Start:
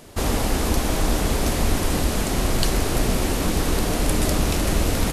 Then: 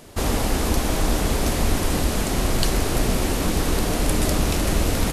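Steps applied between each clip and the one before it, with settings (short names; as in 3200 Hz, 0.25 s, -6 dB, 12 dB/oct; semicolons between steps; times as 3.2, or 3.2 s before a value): nothing audible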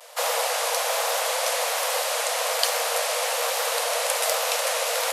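vibrato 1.2 Hz 77 cents; Chebyshev high-pass 470 Hz, order 10; gain +3.5 dB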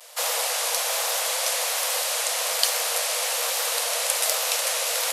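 high shelf 2100 Hz +9.5 dB; gain -6 dB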